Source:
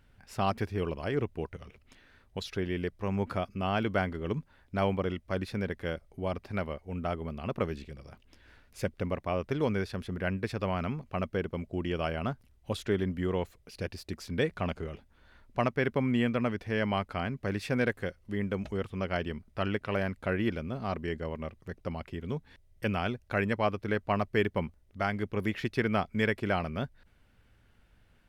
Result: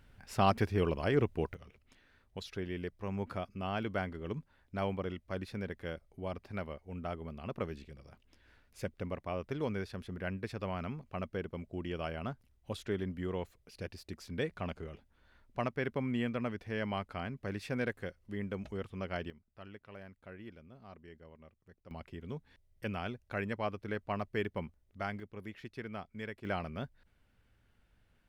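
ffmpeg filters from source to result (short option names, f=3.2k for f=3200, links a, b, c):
-af "asetnsamples=n=441:p=0,asendcmd='1.54 volume volume -6.5dB;19.3 volume volume -19.5dB;21.91 volume volume -7.5dB;25.2 volume volume -14.5dB;26.45 volume volume -6.5dB',volume=1.5dB"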